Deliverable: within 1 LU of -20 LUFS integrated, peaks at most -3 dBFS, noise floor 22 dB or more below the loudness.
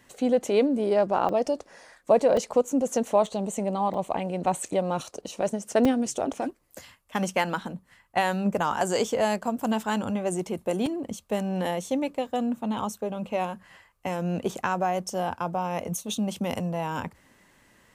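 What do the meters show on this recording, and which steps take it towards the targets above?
dropouts 6; longest dropout 3.2 ms; loudness -27.0 LUFS; peak level -8.5 dBFS; loudness target -20.0 LUFS
-> interpolate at 1.29/2.37/3.26/3.94/5.85/10.86 s, 3.2 ms; trim +7 dB; peak limiter -3 dBFS

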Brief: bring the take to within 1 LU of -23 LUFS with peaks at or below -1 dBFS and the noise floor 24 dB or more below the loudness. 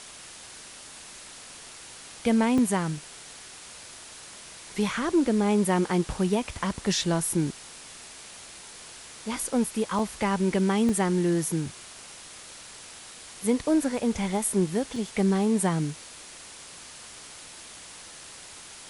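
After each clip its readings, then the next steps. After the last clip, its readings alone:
dropouts 4; longest dropout 2.9 ms; noise floor -45 dBFS; noise floor target -50 dBFS; loudness -26.0 LUFS; peak level -12.0 dBFS; loudness target -23.0 LUFS
-> interpolate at 2.58/9.99/10.89/14.96 s, 2.9 ms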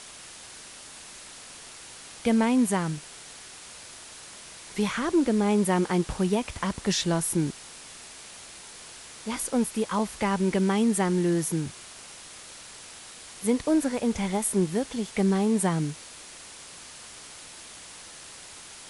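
dropouts 0; noise floor -45 dBFS; noise floor target -50 dBFS
-> noise reduction 6 dB, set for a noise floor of -45 dBFS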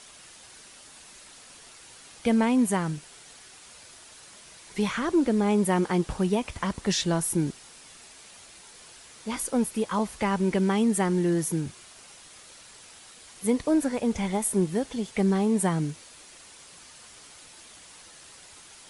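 noise floor -50 dBFS; loudness -26.0 LUFS; peak level -12.0 dBFS; loudness target -23.0 LUFS
-> trim +3 dB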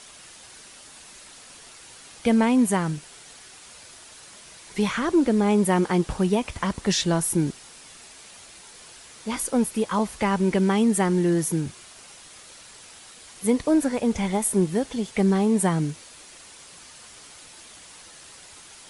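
loudness -23.0 LUFS; peak level -9.0 dBFS; noise floor -47 dBFS

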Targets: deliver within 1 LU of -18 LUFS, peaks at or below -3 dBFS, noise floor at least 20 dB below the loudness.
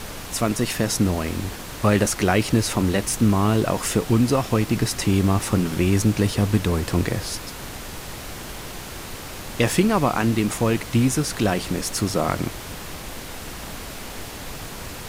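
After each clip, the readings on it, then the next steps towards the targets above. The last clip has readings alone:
noise floor -36 dBFS; noise floor target -42 dBFS; loudness -21.5 LUFS; peak level -4.5 dBFS; loudness target -18.0 LUFS
-> noise print and reduce 6 dB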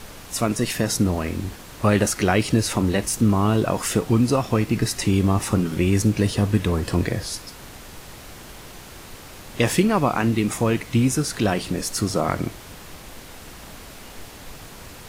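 noise floor -41 dBFS; noise floor target -42 dBFS
-> noise print and reduce 6 dB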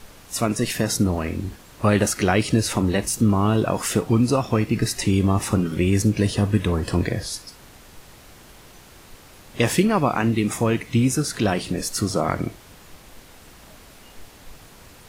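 noise floor -47 dBFS; loudness -22.0 LUFS; peak level -4.5 dBFS; loudness target -18.0 LUFS
-> trim +4 dB; peak limiter -3 dBFS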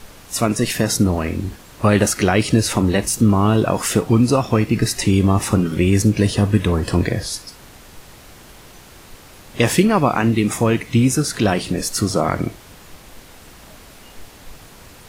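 loudness -18.0 LUFS; peak level -3.0 dBFS; noise floor -43 dBFS

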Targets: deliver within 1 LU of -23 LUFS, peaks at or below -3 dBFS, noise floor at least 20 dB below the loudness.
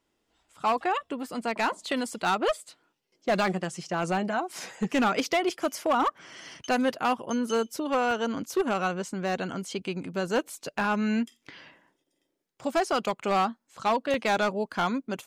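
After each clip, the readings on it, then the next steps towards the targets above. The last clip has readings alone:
clipped samples 1.1%; clipping level -19.0 dBFS; dropouts 2; longest dropout 1.3 ms; loudness -28.5 LUFS; peak level -19.0 dBFS; loudness target -23.0 LUFS
-> clip repair -19 dBFS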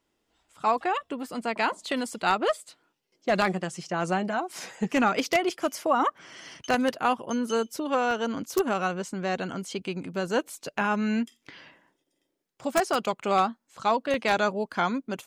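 clipped samples 0.0%; dropouts 2; longest dropout 1.3 ms
-> interpolate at 8.11/14.14 s, 1.3 ms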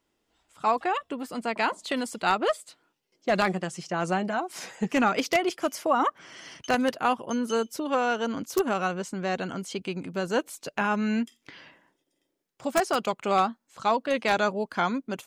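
dropouts 0; loudness -27.5 LUFS; peak level -10.0 dBFS; loudness target -23.0 LUFS
-> trim +4.5 dB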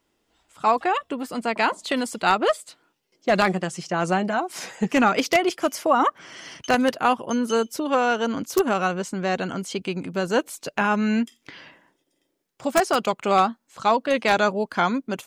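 loudness -23.0 LUFS; peak level -5.5 dBFS; noise floor -73 dBFS

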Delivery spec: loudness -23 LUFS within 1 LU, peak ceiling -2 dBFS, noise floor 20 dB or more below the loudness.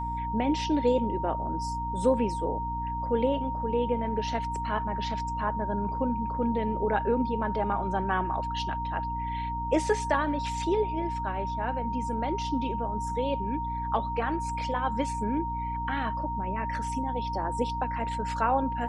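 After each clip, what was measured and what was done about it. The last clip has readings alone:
hum 60 Hz; highest harmonic 300 Hz; hum level -33 dBFS; steady tone 930 Hz; tone level -31 dBFS; loudness -29.5 LUFS; peak level -12.0 dBFS; loudness target -23.0 LUFS
-> hum notches 60/120/180/240/300 Hz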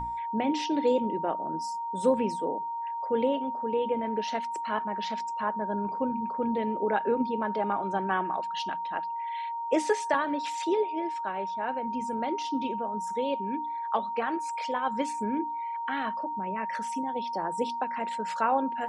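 hum not found; steady tone 930 Hz; tone level -31 dBFS
-> band-stop 930 Hz, Q 30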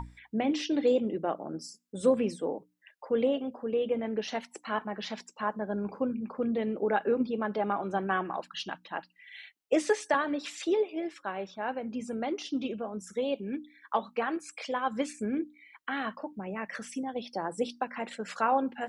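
steady tone not found; loudness -32.0 LUFS; peak level -13.5 dBFS; loudness target -23.0 LUFS
-> trim +9 dB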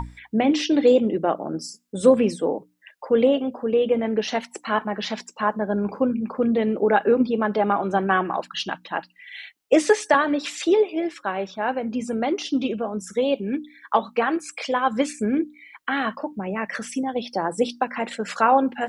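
loudness -23.0 LUFS; peak level -4.5 dBFS; noise floor -58 dBFS

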